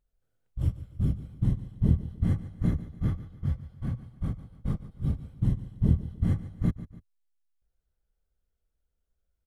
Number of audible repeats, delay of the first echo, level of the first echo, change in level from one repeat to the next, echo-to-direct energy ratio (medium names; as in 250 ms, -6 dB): 2, 145 ms, -15.0 dB, -7.5 dB, -14.5 dB